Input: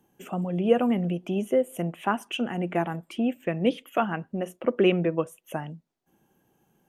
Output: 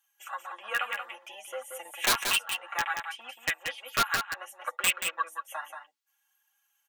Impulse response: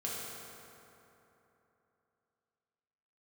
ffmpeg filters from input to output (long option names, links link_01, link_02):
-filter_complex "[0:a]afwtdn=0.0158,highpass=frequency=1200:width=0.5412,highpass=frequency=1200:width=1.3066,highshelf=frequency=2000:gain=7,aecho=1:1:3.6:0.68,asplit=2[link_01][link_02];[link_02]acompressor=threshold=-45dB:ratio=16,volume=-3dB[link_03];[link_01][link_03]amix=inputs=2:normalize=0,alimiter=limit=-20dB:level=0:latency=1:release=335,asettb=1/sr,asplit=3[link_04][link_05][link_06];[link_04]atrim=end=1.854[link_07];[link_05]atrim=start=1.85:end=2.27,asetpts=PTS-STARTPTS,afade=type=in:duration=0.004:curve=qsin,afade=type=out:start_time=0.416:duration=0.004:curve=qsin,acontrast=79[link_08];[link_06]atrim=start=2.266[link_09];[link_07][link_08]acrossfade=duration=0.004:curve1=hsin:curve2=qsin[link_10];[link_10][link_09]acrossfade=duration=0.004:curve1=qsin:curve2=hsin,aeval=exprs='(mod(12.6*val(0)+1,2)-1)/12.6':channel_layout=same,flanger=delay=4.9:depth=5.7:regen=3:speed=0.61:shape=triangular,aecho=1:1:181:0.473,volume=8.5dB"